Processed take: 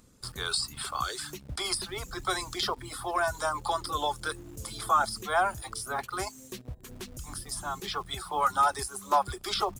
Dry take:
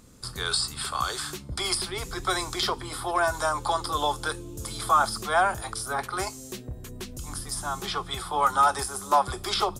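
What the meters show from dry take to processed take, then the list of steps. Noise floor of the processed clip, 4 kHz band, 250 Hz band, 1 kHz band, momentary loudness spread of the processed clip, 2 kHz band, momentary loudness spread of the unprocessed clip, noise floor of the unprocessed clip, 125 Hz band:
-52 dBFS, -4.0 dB, -4.5 dB, -3.5 dB, 14 LU, -3.5 dB, 13 LU, -42 dBFS, -5.0 dB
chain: reverb removal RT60 0.72 s; in parallel at -8 dB: bit-crush 7-bit; on the sum: gain -6 dB

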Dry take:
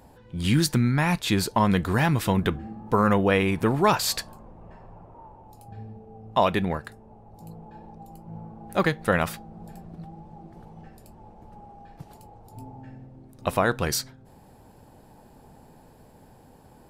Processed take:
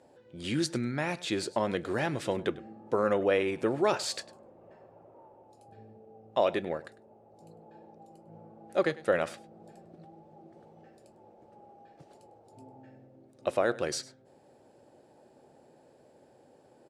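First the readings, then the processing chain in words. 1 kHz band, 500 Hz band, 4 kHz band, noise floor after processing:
-9.5 dB, -2.0 dB, -7.5 dB, -61 dBFS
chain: speaker cabinet 170–9200 Hz, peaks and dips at 190 Hz -7 dB, 360 Hz +6 dB, 560 Hz +9 dB, 1000 Hz -6 dB; echo 0.101 s -19 dB; gain -7.5 dB

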